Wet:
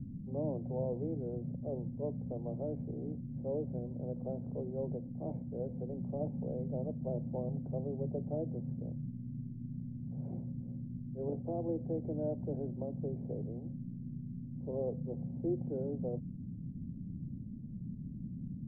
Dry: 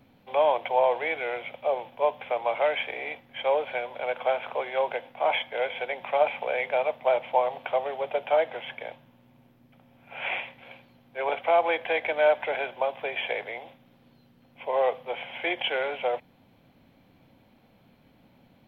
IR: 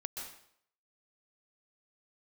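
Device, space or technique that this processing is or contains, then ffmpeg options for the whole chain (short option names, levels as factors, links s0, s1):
the neighbour's flat through the wall: -af "lowpass=f=220:w=0.5412,lowpass=f=220:w=1.3066,equalizer=f=170:t=o:w=0.76:g=4,volume=7.5"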